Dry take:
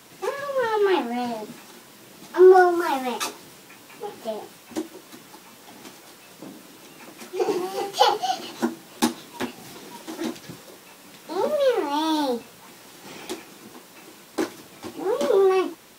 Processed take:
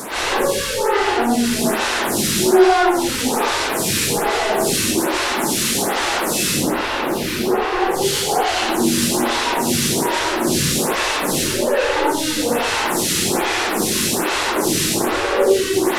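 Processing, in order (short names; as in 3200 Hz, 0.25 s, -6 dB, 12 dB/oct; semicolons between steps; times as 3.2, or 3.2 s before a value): delta modulation 64 kbps, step -14 dBFS; 6.51–7.81 bell 8200 Hz -12.5 dB 1.4 oct; soft clip -7.5 dBFS, distortion -22 dB; reverb, pre-delay 93 ms, DRR -9.5 dB; photocell phaser 1.2 Hz; gain -5 dB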